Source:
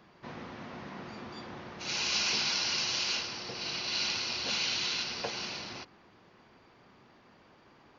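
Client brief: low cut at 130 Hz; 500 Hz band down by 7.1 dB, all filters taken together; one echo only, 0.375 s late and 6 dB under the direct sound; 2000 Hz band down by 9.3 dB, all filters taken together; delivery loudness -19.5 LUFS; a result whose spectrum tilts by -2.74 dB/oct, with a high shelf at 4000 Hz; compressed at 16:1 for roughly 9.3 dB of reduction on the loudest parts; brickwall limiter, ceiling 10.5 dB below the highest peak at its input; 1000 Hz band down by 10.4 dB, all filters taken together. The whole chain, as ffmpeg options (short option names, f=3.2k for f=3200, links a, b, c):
-af "highpass=130,equalizer=f=500:t=o:g=-6.5,equalizer=f=1k:t=o:g=-8.5,equalizer=f=2k:t=o:g=-8.5,highshelf=f=4k:g=-7,acompressor=threshold=-42dB:ratio=16,alimiter=level_in=15.5dB:limit=-24dB:level=0:latency=1,volume=-15.5dB,aecho=1:1:375:0.501,volume=27dB"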